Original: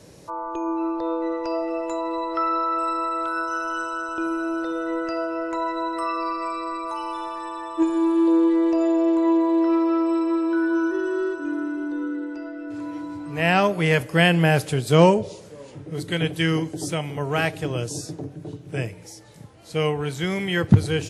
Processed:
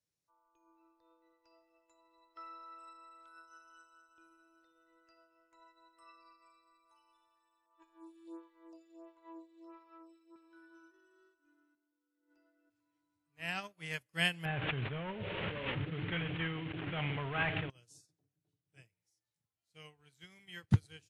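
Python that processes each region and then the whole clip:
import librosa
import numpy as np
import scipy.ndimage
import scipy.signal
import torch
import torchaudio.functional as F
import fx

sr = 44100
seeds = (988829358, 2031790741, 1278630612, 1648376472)

y = fx.chain(x, sr, fx.peak_eq(hz=760.0, db=4.5, octaves=2.5),
    fx.stagger_phaser(hz=1.5), at=(7.66, 10.36))
y = fx.chain(y, sr, fx.over_compress(threshold_db=-32.0, ratio=-0.5),
    fx.peak_eq(hz=520.0, db=6.5, octaves=1.6), at=(11.75, 12.7))
y = fx.chain(y, sr, fx.cvsd(bps=16000),
    fx.env_flatten(amount_pct=100), at=(14.45, 17.7))
y = fx.tone_stack(y, sr, knobs='5-5-5')
y = fx.upward_expand(y, sr, threshold_db=-48.0, expansion=2.5)
y = y * librosa.db_to_amplitude(4.5)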